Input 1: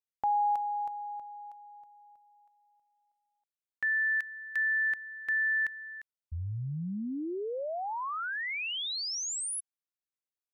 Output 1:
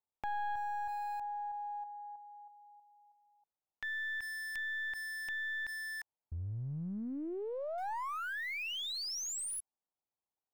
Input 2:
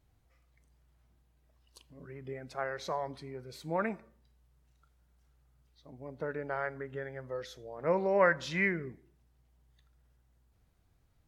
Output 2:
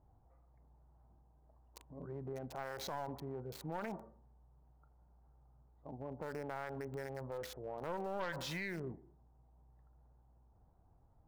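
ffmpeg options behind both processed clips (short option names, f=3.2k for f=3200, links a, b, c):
-filter_complex "[0:a]equalizer=f=850:t=o:w=0.66:g=10,acrossover=split=1200[a][b];[b]aeval=exprs='val(0)*gte(abs(val(0)),0.00562)':c=same[c];[a][c]amix=inputs=2:normalize=0,aeval=exprs='0.355*(cos(1*acos(clip(val(0)/0.355,-1,1)))-cos(1*PI/2))+0.0708*(cos(4*acos(clip(val(0)/0.355,-1,1)))-cos(4*PI/2))+0.00501*(cos(5*acos(clip(val(0)/0.355,-1,1)))-cos(5*PI/2))+0.00891*(cos(7*acos(clip(val(0)/0.355,-1,1)))-cos(7*PI/2))':c=same,acompressor=threshold=-41dB:ratio=4:attack=0.45:release=39:knee=1:detection=peak,volume=3dB"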